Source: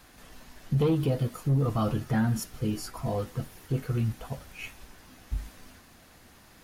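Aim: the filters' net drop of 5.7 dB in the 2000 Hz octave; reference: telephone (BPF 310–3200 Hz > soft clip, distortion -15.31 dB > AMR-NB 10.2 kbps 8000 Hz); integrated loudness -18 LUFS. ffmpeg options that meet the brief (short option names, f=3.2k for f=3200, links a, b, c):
-af "highpass=310,lowpass=3.2k,equalizer=f=2k:t=o:g=-7,asoftclip=threshold=-25.5dB,volume=20dB" -ar 8000 -c:a libopencore_amrnb -b:a 10200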